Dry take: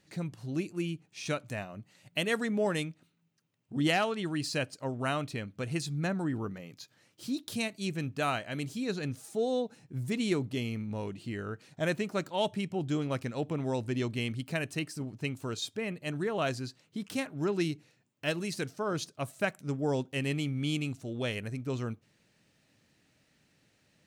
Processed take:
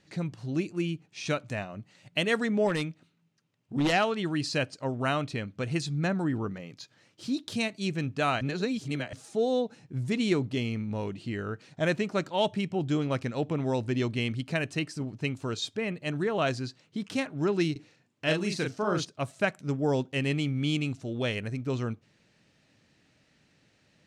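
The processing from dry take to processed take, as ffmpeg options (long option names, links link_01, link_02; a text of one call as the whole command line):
ffmpeg -i in.wav -filter_complex "[0:a]asplit=3[link_01][link_02][link_03];[link_01]afade=type=out:start_time=2.67:duration=0.02[link_04];[link_02]aeval=exprs='0.0708*(abs(mod(val(0)/0.0708+3,4)-2)-1)':channel_layout=same,afade=type=in:start_time=2.67:duration=0.02,afade=type=out:start_time=3.92:duration=0.02[link_05];[link_03]afade=type=in:start_time=3.92:duration=0.02[link_06];[link_04][link_05][link_06]amix=inputs=3:normalize=0,asettb=1/sr,asplit=3[link_07][link_08][link_09];[link_07]atrim=end=17.724[link_10];[link_08]atrim=start=17.72:end=19.05,asetpts=PTS-STARTPTS,afade=type=in:duration=0.004:curve=qsin,afade=type=out:start_time=1.326:duration=0.004:curve=qsin,asplit=2[link_11][link_12];[link_12]adelay=38,volume=-4dB[link_13];[link_11][link_13]amix=inputs=2:normalize=0,atrim=end_sample=58653[link_14];[link_09]atrim=start=19.046[link_15];[link_10][link_14]acrossfade=duration=0.004:curve1=hsin:curve2=qsin[link_16];[link_16][link_15]acrossfade=duration=0.004:curve1=qsin:curve2=hsin,asplit=3[link_17][link_18][link_19];[link_17]atrim=end=8.412[link_20];[link_18]atrim=start=8.408:end=9.132,asetpts=PTS-STARTPTS,areverse[link_21];[link_19]atrim=start=9.128[link_22];[link_20][link_21]acrossfade=duration=0.004:curve1=hsin:curve2=hsin[link_23];[link_23][link_22]acrossfade=duration=0.004:curve1=hsin:curve2=hsin,lowpass=6800,volume=3.5dB" out.wav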